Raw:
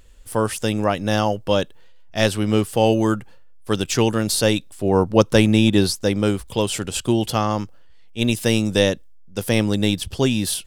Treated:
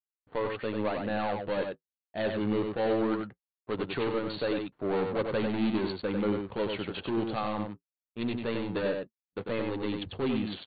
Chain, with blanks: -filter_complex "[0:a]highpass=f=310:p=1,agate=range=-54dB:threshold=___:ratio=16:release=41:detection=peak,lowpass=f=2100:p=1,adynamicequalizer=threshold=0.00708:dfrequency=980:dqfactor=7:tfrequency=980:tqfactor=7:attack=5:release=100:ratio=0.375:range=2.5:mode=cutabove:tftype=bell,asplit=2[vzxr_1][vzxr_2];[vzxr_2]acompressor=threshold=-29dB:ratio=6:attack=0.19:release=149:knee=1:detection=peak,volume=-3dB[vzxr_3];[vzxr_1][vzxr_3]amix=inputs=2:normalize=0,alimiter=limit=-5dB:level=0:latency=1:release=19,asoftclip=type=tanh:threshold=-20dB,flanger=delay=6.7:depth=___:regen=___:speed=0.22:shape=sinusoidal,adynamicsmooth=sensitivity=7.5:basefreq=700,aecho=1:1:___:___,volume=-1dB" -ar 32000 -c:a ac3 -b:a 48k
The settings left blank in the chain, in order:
-51dB, 3, -50, 95, 0.562